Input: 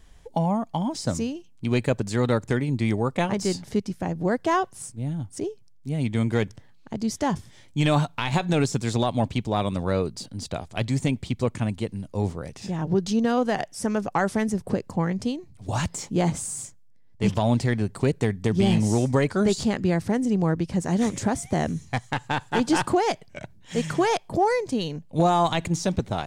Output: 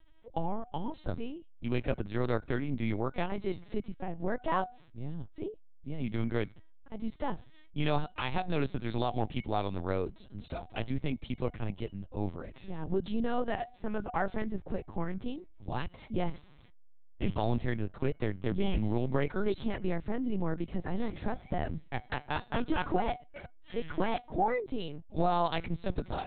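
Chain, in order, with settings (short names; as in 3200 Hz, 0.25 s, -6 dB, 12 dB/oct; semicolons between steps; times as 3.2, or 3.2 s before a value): resonator 730 Hz, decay 0.3 s, mix 60%; LPC vocoder at 8 kHz pitch kept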